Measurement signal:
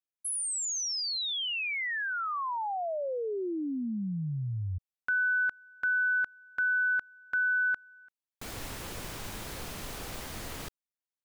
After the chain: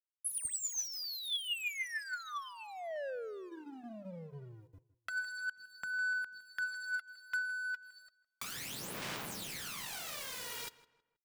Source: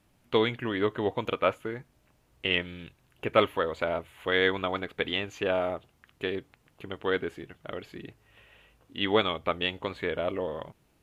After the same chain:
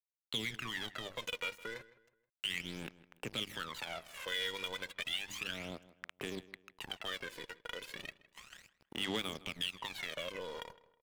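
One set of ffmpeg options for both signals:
-filter_complex "[0:a]highpass=f=140:w=0.5412,highpass=f=140:w=1.3066,highshelf=f=3.7k:g=-7,bandreject=f=50:t=h:w=6,bandreject=f=100:t=h:w=6,bandreject=f=150:t=h:w=6,bandreject=f=200:t=h:w=6,bandreject=f=250:t=h:w=6,bandreject=f=300:t=h:w=6,bandreject=f=350:t=h:w=6,acrossover=split=220|2500[a][b][c];[b]acompressor=threshold=-46dB:ratio=3:attack=0.18:release=190:knee=2.83:detection=peak[d];[a][d][c]amix=inputs=3:normalize=0,tiltshelf=f=810:g=-5.5,acompressor=threshold=-55dB:ratio=2.5:attack=57:release=35:knee=1:detection=rms,aeval=exprs='sgn(val(0))*max(abs(val(0))-0.00211,0)':c=same,aphaser=in_gain=1:out_gain=1:delay=2.1:decay=0.68:speed=0.33:type=sinusoidal,asoftclip=type=tanh:threshold=-37dB,asplit=2[e][f];[f]adelay=160,lowpass=f=2.8k:p=1,volume=-17.5dB,asplit=2[g][h];[h]adelay=160,lowpass=f=2.8k:p=1,volume=0.37,asplit=2[i][j];[j]adelay=160,lowpass=f=2.8k:p=1,volume=0.37[k];[e][g][i][k]amix=inputs=4:normalize=0,volume=9.5dB"

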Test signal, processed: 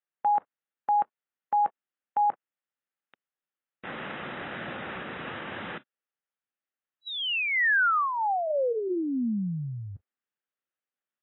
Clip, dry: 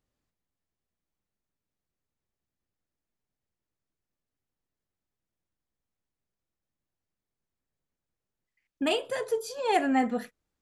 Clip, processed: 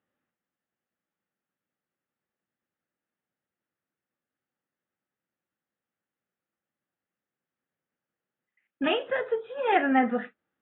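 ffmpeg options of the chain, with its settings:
-af "highpass=280,equalizer=f=300:t=q:w=4:g=-5,equalizer=f=420:t=q:w=4:g=-8,equalizer=f=670:t=q:w=4:g=-7,equalizer=f=1k:t=q:w=4:g=-9,equalizer=f=2.3k:t=q:w=4:g=-6,lowpass=f=2.5k:w=0.5412,lowpass=f=2.5k:w=1.3066,acontrast=51,volume=2dB" -ar 22050 -c:a aac -b:a 16k

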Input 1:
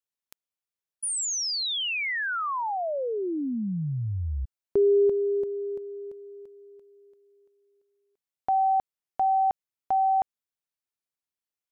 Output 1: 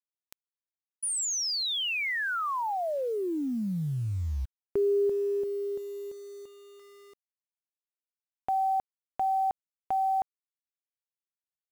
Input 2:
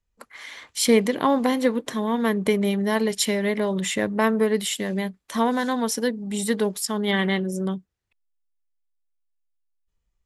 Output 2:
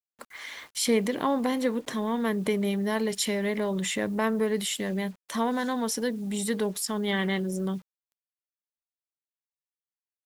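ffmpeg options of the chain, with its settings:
-filter_complex "[0:a]asplit=2[a][b];[b]acompressor=threshold=-28dB:ratio=20:attack=1.9:release=27:knee=1:detection=rms,volume=2.5dB[c];[a][c]amix=inputs=2:normalize=0,acrusher=bits=7:mix=0:aa=0.000001,volume=-8dB"

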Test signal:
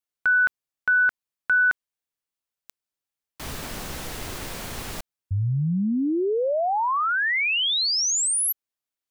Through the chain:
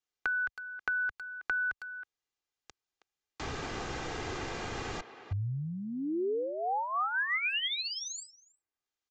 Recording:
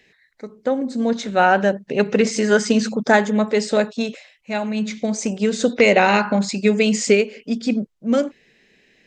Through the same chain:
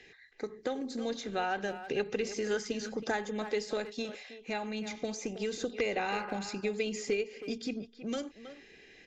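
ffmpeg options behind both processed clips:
-filter_complex "[0:a]acrossover=split=81|2400[a][b][c];[a]acompressor=threshold=-51dB:ratio=4[d];[b]acompressor=threshold=-35dB:ratio=4[e];[c]acompressor=threshold=-46dB:ratio=4[f];[d][e][f]amix=inputs=3:normalize=0,aecho=1:1:2.5:0.43,aresample=16000,aresample=44100,asplit=2[g][h];[h]adelay=320,highpass=300,lowpass=3.4k,asoftclip=type=hard:threshold=-27dB,volume=-11dB[i];[g][i]amix=inputs=2:normalize=0"

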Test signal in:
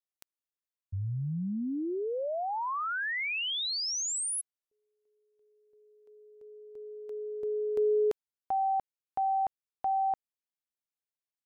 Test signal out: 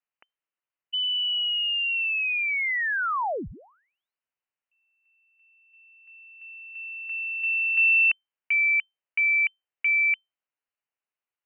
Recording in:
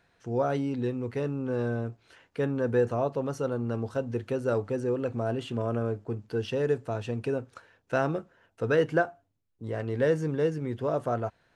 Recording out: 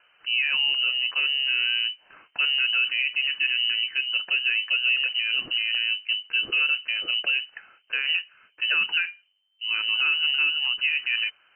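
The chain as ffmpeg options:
-af "alimiter=limit=-22.5dB:level=0:latency=1:release=42,lowpass=f=2.6k:t=q:w=0.5098,lowpass=f=2.6k:t=q:w=0.6013,lowpass=f=2.6k:t=q:w=0.9,lowpass=f=2.6k:t=q:w=2.563,afreqshift=-3100,volume=6.5dB"

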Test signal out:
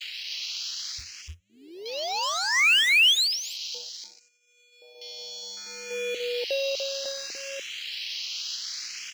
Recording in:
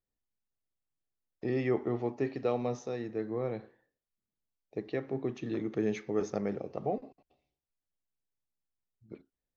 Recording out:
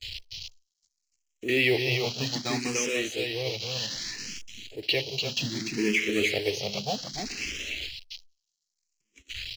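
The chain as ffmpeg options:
-filter_complex "[0:a]aeval=exprs='val(0)+0.5*0.0141*sgn(val(0))':c=same,aexciter=amount=12.6:drive=7.4:freq=2.3k,equalizer=f=100:w=2:g=4.5,agate=range=-32dB:threshold=-24dB:ratio=16:detection=peak,asplit=2[a][b];[b]acompressor=threshold=-23dB:ratio=12,volume=-0.5dB[c];[a][c]amix=inputs=2:normalize=0,aresample=16000,aresample=44100,acrossover=split=3400[d][e];[e]acompressor=threshold=-31dB:ratio=4:attack=1:release=60[f];[d][f]amix=inputs=2:normalize=0,afwtdn=0.0178,asplit=2[g][h];[h]aecho=0:1:294:0.668[i];[g][i]amix=inputs=2:normalize=0,acrusher=bits=6:mode=log:mix=0:aa=0.000001,bandreject=f=3.6k:w=9.4,asplit=2[j][k];[k]afreqshift=0.64[l];[j][l]amix=inputs=2:normalize=1"

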